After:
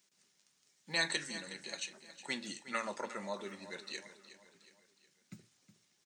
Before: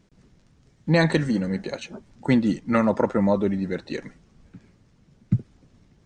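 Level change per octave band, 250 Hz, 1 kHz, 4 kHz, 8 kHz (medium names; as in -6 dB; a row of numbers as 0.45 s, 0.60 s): -26.0 dB, -14.0 dB, -2.0 dB, no reading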